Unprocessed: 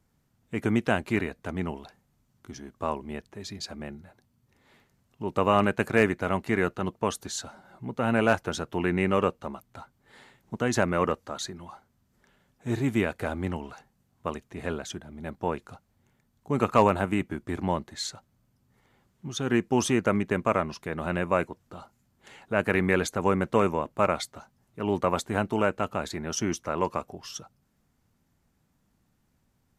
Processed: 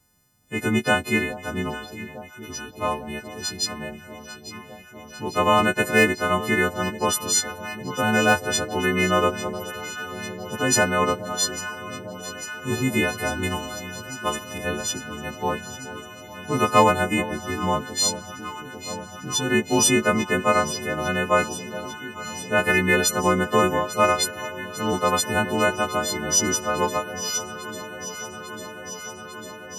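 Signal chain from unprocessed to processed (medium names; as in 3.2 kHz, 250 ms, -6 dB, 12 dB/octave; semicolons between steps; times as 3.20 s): partials quantised in pitch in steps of 3 st; 13.43–14.58 s: treble shelf 2 kHz +9.5 dB; echo whose repeats swap between lows and highs 424 ms, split 910 Hz, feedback 90%, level -14 dB; trim +3 dB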